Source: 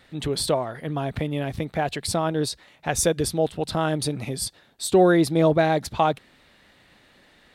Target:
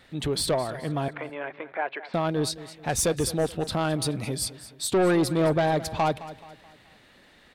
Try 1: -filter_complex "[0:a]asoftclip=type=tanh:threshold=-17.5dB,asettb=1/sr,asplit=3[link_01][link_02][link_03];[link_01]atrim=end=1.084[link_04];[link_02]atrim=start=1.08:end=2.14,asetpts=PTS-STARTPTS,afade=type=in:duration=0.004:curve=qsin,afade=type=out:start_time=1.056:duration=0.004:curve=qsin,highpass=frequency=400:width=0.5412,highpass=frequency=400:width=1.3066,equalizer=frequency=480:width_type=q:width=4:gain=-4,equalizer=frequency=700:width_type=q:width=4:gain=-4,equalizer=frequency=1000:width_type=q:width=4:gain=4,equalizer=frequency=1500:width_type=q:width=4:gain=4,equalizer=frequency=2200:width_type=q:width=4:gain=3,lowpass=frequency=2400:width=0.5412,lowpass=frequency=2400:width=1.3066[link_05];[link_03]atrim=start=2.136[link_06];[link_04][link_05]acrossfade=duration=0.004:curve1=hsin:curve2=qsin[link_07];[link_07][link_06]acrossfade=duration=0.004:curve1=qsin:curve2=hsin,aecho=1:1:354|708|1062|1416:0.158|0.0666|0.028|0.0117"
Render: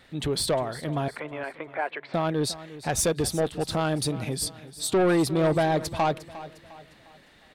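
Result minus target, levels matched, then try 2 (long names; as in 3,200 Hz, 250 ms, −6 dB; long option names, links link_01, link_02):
echo 140 ms late
-filter_complex "[0:a]asoftclip=type=tanh:threshold=-17.5dB,asettb=1/sr,asplit=3[link_01][link_02][link_03];[link_01]atrim=end=1.084[link_04];[link_02]atrim=start=1.08:end=2.14,asetpts=PTS-STARTPTS,afade=type=in:duration=0.004:curve=qsin,afade=type=out:start_time=1.056:duration=0.004:curve=qsin,highpass=frequency=400:width=0.5412,highpass=frequency=400:width=1.3066,equalizer=frequency=480:width_type=q:width=4:gain=-4,equalizer=frequency=700:width_type=q:width=4:gain=-4,equalizer=frequency=1000:width_type=q:width=4:gain=4,equalizer=frequency=1500:width_type=q:width=4:gain=4,equalizer=frequency=2200:width_type=q:width=4:gain=3,lowpass=frequency=2400:width=0.5412,lowpass=frequency=2400:width=1.3066[link_05];[link_03]atrim=start=2.136[link_06];[link_04][link_05]acrossfade=duration=0.004:curve1=hsin:curve2=qsin[link_07];[link_07][link_06]acrossfade=duration=0.004:curve1=qsin:curve2=hsin,aecho=1:1:214|428|642|856:0.158|0.0666|0.028|0.0117"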